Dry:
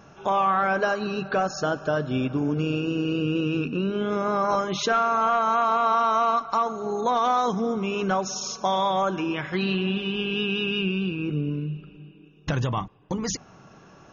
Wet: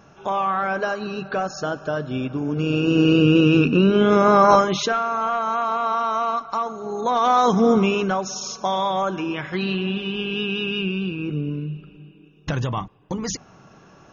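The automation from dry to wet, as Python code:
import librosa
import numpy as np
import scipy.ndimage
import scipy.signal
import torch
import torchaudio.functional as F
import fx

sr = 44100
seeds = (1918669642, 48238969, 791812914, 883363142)

y = fx.gain(x, sr, db=fx.line((2.45, -0.5), (3.02, 10.0), (4.54, 10.0), (4.98, -1.0), (6.89, -1.0), (7.77, 11.0), (8.13, 1.0)))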